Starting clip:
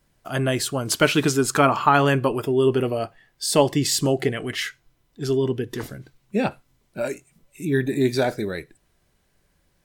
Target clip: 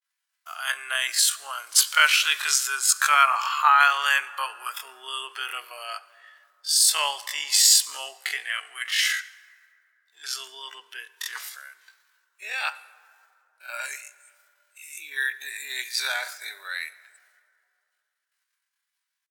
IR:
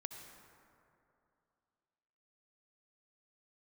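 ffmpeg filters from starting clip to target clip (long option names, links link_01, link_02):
-filter_complex "[0:a]agate=range=-33dB:threshold=-55dB:ratio=3:detection=peak,atempo=0.51,highpass=frequency=1200:width=0.5412,highpass=frequency=1200:width=1.3066,asplit=2[link_01][link_02];[1:a]atrim=start_sample=2205[link_03];[link_02][link_03]afir=irnorm=-1:irlink=0,volume=-9dB[link_04];[link_01][link_04]amix=inputs=2:normalize=0,adynamicequalizer=threshold=0.0141:dfrequency=4700:dqfactor=0.7:tfrequency=4700:tqfactor=0.7:attack=5:release=100:ratio=0.375:range=1.5:mode=boostabove:tftype=highshelf,volume=2.5dB"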